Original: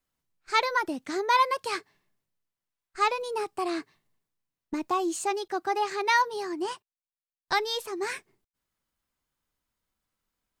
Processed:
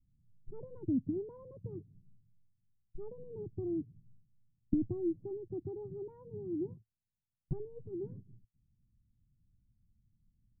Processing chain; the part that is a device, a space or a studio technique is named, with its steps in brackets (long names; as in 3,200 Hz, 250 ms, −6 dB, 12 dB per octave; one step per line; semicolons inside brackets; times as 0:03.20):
the neighbour's flat through the wall (low-pass filter 190 Hz 24 dB per octave; parametric band 110 Hz +7 dB 0.47 octaves)
level +16.5 dB